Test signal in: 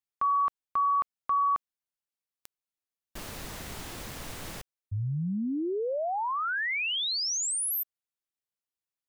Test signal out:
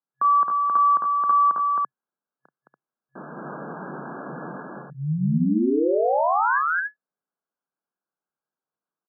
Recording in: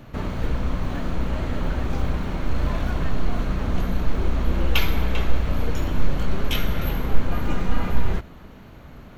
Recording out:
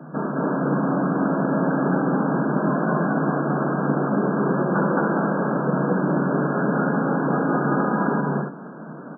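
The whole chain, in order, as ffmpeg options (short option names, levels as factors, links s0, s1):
-af "afreqshift=22,aecho=1:1:32.07|215.7|285.7:0.355|1|0.708,afftfilt=real='re*between(b*sr/4096,130,1700)':imag='im*between(b*sr/4096,130,1700)':win_size=4096:overlap=0.75,volume=1.88"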